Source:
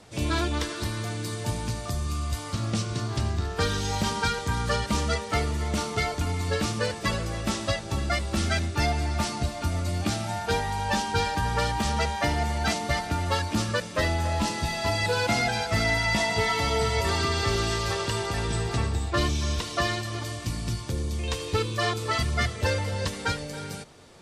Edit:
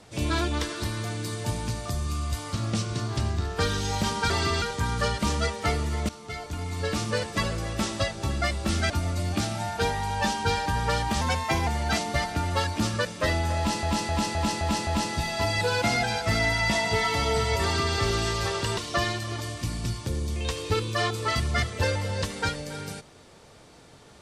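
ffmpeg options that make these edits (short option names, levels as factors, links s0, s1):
-filter_complex "[0:a]asplit=13[s0][s1][s2][s3][s4][s5][s6][s7][s8][s9][s10][s11][s12];[s0]atrim=end=4.302[s13];[s1]atrim=start=17.078:end=17.402[s14];[s2]atrim=start=4.298:end=5.77,asetpts=PTS-STARTPTS,afade=t=out:st=1.468:d=0.004:c=hsin:silence=0.141254[s15];[s3]atrim=start=5.77:end=8.582,asetpts=PTS-STARTPTS,afade=t=in:d=1.02:silence=0.141254[s16];[s4]atrim=start=9.588:end=11.904[s17];[s5]atrim=start=11.9:end=12.42,asetpts=PTS-STARTPTS,asetrate=49833,aresample=44100[s18];[s6]atrim=start=12.416:end=14.582[s19];[s7]atrim=start=14.318:end=14.582[s20];[s8]atrim=start=14.318:end=14.582[s21];[s9]atrim=start=14.318:end=14.582[s22];[s10]atrim=start=14.318:end=14.582[s23];[s11]atrim=start=14.318:end=18.222[s24];[s12]atrim=start=19.598[s25];[s13][s14]acrossfade=d=0.004:c1=hsin:c2=hsin[s26];[s15][s16]concat=n=2:v=0:a=1[s27];[s26][s27]acrossfade=d=0.004:c1=hsin:c2=hsin[s28];[s28][s17]acrossfade=d=0.004:c1=hsin:c2=hsin[s29];[s29][s18]acrossfade=d=0.004:c1=hsin:c2=hsin[s30];[s30][s19]acrossfade=d=0.004:c1=hsin:c2=hsin[s31];[s31][s20]acrossfade=d=0.004:c1=hsin:c2=hsin[s32];[s32][s21]acrossfade=d=0.004:c1=hsin:c2=hsin[s33];[s33][s22]acrossfade=d=0.004:c1=hsin:c2=hsin[s34];[s34][s23]acrossfade=d=0.004:c1=hsin:c2=hsin[s35];[s35][s24]acrossfade=d=0.004:c1=hsin:c2=hsin[s36];[s36][s25]acrossfade=d=0.004:c1=hsin:c2=hsin"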